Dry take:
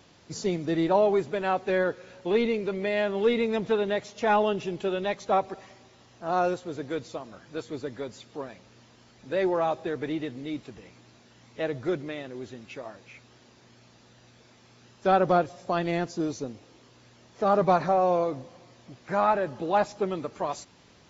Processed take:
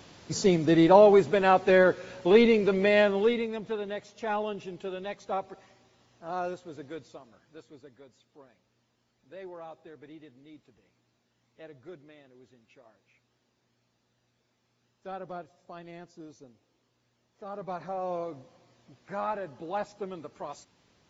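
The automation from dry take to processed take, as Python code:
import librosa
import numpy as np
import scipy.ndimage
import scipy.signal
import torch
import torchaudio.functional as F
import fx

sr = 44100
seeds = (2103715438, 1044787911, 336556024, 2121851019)

y = fx.gain(x, sr, db=fx.line((3.0, 5.0), (3.55, -8.0), (6.84, -8.0), (7.99, -18.0), (17.5, -18.0), (18.15, -9.0)))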